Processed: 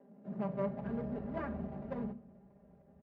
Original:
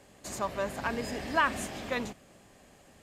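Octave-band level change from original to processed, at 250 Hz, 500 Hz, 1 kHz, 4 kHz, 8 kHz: 0.0 dB, -5.0 dB, -14.5 dB, under -25 dB, under -40 dB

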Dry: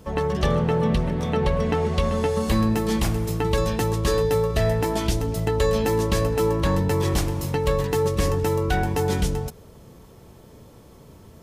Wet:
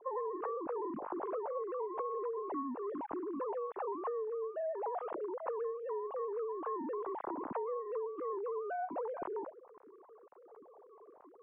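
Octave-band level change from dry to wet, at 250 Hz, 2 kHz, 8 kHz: -19.5 dB, -23.0 dB, under -40 dB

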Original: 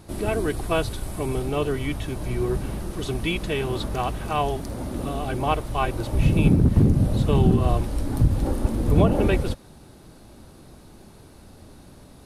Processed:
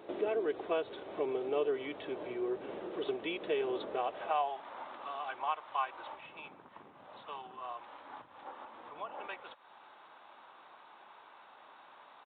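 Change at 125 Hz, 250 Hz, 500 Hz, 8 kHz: under -40 dB, -20.0 dB, -9.0 dB, under -40 dB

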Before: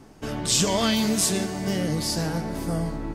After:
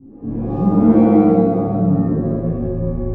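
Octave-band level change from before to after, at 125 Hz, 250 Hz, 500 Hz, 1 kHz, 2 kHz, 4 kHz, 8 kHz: +10.0 dB, +12.0 dB, +10.0 dB, +7.0 dB, n/a, under -30 dB, under -40 dB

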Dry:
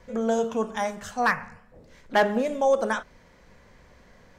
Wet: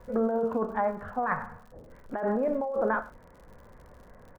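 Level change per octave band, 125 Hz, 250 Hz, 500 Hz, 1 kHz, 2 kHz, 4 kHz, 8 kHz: -1.0 dB, -2.0 dB, -3.5 dB, -4.0 dB, -8.0 dB, under -25 dB, under -20 dB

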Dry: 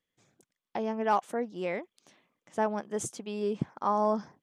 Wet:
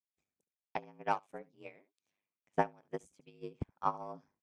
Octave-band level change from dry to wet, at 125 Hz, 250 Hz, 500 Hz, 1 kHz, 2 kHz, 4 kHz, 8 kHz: -5.5 dB, -12.5 dB, -11.0 dB, -6.5 dB, -5.5 dB, -10.0 dB, under -20 dB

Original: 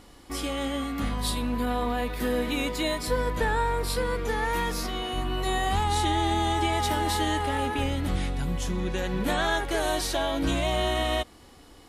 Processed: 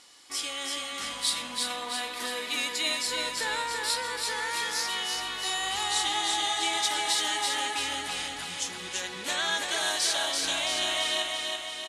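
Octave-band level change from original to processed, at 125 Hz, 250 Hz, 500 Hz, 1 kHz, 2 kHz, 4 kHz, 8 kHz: -24.5, -15.0, -9.5, -4.5, +1.0, +6.0, +7.0 dB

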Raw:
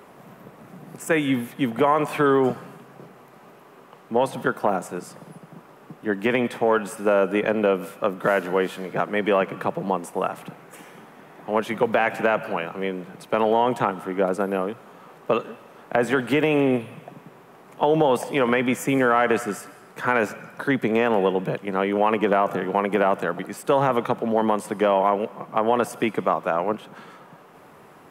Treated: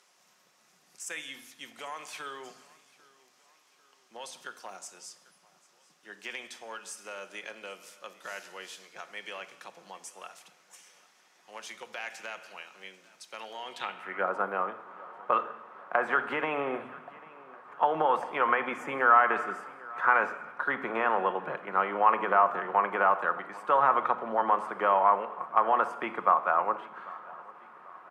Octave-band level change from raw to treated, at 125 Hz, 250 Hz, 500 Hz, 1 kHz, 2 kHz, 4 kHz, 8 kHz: -22.0, -18.5, -12.5, -2.0, -4.0, -8.5, -6.0 dB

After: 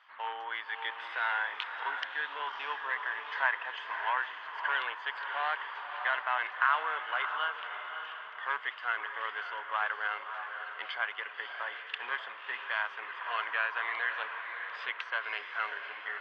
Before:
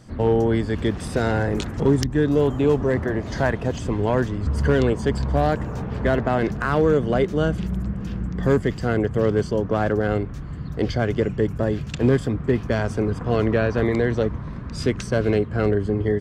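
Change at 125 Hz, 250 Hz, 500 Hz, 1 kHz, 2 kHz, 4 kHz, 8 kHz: under -40 dB, under -40 dB, -27.0 dB, -3.5 dB, +0.5 dB, -2.5 dB, n/a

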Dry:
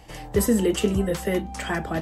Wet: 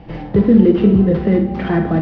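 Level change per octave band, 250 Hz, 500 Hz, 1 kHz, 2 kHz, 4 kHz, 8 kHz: +12.5 dB, +7.5 dB, +5.0 dB, +1.5 dB, n/a, under -30 dB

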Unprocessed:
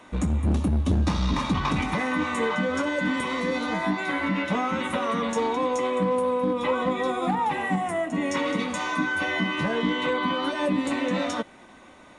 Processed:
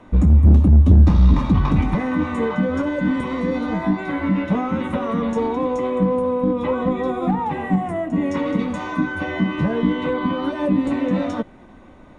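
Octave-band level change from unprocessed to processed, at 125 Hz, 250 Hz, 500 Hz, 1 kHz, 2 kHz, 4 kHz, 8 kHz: +12.0 dB, +7.0 dB, +3.5 dB, +0.5 dB, -3.0 dB, -6.0 dB, n/a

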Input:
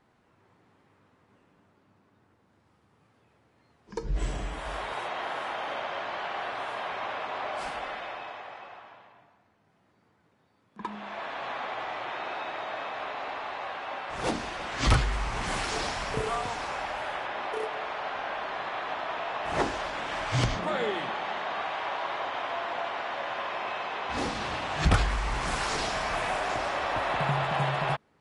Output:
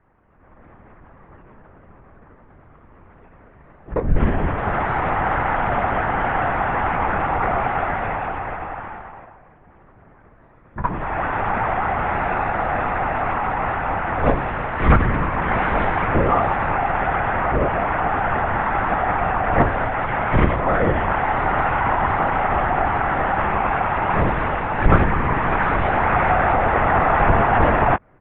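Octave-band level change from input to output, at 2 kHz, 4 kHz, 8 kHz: +10.5 dB, -5.0 dB, under -35 dB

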